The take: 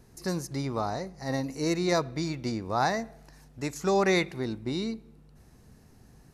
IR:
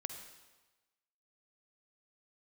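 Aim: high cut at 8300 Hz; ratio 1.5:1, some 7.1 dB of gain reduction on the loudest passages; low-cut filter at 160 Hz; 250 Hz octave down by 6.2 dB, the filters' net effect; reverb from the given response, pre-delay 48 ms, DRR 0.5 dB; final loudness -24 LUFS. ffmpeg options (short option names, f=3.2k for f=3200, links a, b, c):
-filter_complex "[0:a]highpass=160,lowpass=8.3k,equalizer=f=250:t=o:g=-8.5,acompressor=threshold=-42dB:ratio=1.5,asplit=2[a][b];[1:a]atrim=start_sample=2205,adelay=48[c];[b][c]afir=irnorm=-1:irlink=0,volume=1dB[d];[a][d]amix=inputs=2:normalize=0,volume=11.5dB"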